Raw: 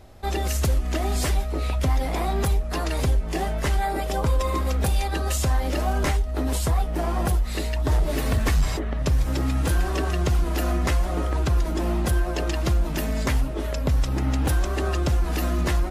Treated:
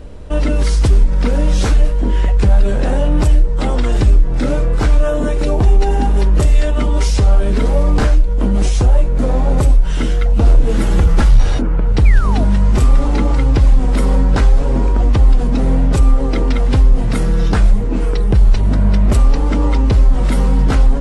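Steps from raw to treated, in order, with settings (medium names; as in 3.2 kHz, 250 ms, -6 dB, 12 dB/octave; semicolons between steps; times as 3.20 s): tilt EQ -1.5 dB/octave; in parallel at +0.5 dB: peak limiter -25 dBFS, peak gain reduction 17.5 dB; on the sum: wide varispeed 0.757×; painted sound fall, 12.05–12.45 s, 570–2500 Hz -31 dBFS; trim +4.5 dB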